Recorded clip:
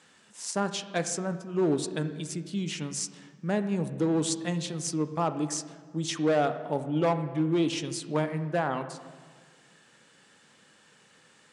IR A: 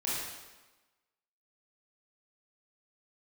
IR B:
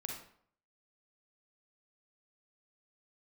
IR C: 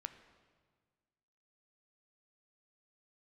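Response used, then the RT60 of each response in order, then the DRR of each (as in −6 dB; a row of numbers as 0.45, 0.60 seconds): C; 1.2, 0.60, 1.6 seconds; −8.0, 0.0, 9.0 decibels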